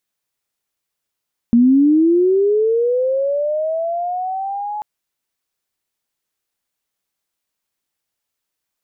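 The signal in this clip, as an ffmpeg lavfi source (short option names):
-f lavfi -i "aevalsrc='pow(10,(-7.5-14.5*t/3.29)/20)*sin(2*PI*(230*t+620*t*t/(2*3.29)))':d=3.29:s=44100"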